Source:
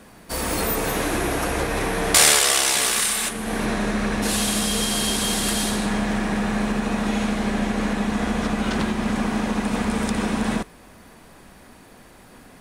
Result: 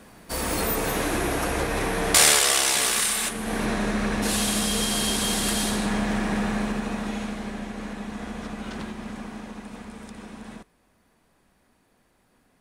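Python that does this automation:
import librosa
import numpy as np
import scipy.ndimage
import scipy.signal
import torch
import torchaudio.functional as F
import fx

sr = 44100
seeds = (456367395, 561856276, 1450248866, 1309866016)

y = fx.gain(x, sr, db=fx.line((6.42, -2.0), (7.66, -11.0), (8.86, -11.0), (9.97, -17.5)))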